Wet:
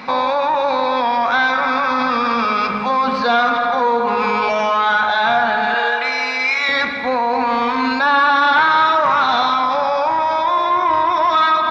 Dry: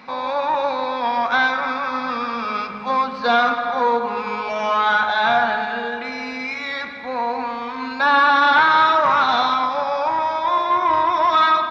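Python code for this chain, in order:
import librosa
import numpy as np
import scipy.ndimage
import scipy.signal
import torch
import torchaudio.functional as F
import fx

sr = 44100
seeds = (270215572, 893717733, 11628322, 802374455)

p1 = fx.highpass(x, sr, hz=620.0, slope=12, at=(5.74, 6.69))
p2 = fx.over_compress(p1, sr, threshold_db=-27.0, ratio=-1.0)
y = p1 + (p2 * librosa.db_to_amplitude(1.0))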